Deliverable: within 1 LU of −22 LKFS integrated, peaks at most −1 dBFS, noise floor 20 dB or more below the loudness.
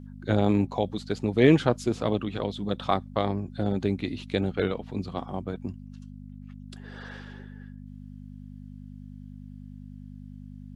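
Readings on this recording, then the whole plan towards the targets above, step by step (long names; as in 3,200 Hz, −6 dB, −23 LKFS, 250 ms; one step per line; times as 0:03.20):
mains hum 50 Hz; hum harmonics up to 250 Hz; level of the hum −41 dBFS; integrated loudness −27.0 LKFS; sample peak −5.0 dBFS; target loudness −22.0 LKFS
→ hum removal 50 Hz, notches 5
level +5 dB
brickwall limiter −1 dBFS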